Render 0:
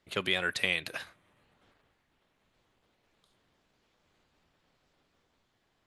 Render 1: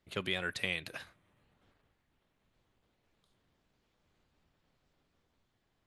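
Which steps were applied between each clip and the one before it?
bass shelf 230 Hz +7.5 dB; trim -6 dB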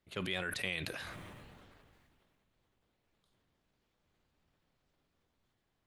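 decay stretcher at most 24 dB/s; trim -3.5 dB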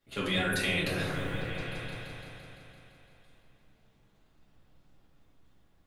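delay with an opening low-pass 170 ms, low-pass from 200 Hz, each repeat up 1 oct, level 0 dB; reverberation RT60 0.90 s, pre-delay 4 ms, DRR -7 dB

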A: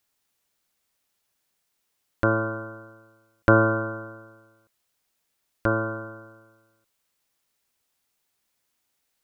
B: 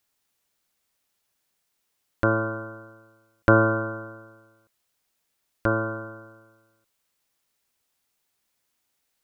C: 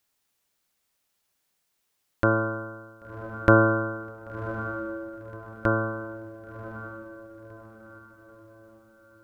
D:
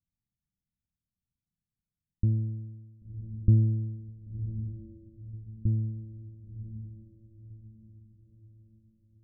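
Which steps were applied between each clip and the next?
no audible change
echo that smears into a reverb 1065 ms, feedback 41%, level -11.5 dB
inverse Chebyshev low-pass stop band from 850 Hz, stop band 70 dB; trim +4 dB

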